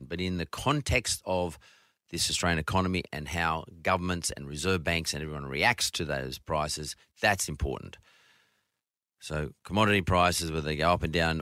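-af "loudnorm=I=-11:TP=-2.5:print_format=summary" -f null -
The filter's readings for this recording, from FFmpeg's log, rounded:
Input Integrated:    -28.5 LUFS
Input True Peak:      -9.8 dBTP
Input LRA:             2.7 LU
Input Threshold:     -39.1 LUFS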